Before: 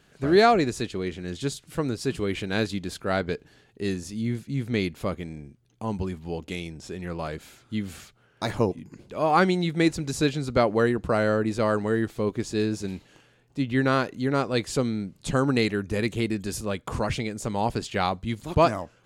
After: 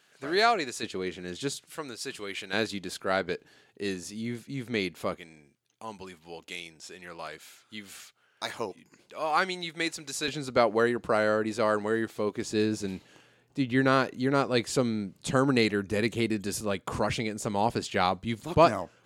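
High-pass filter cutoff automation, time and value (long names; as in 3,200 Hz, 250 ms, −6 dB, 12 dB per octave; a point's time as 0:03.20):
high-pass filter 6 dB per octave
1,100 Hz
from 0:00.83 340 Hz
from 0:01.66 1,400 Hz
from 0:02.53 390 Hz
from 0:05.17 1,400 Hz
from 0:10.28 390 Hz
from 0:12.42 160 Hz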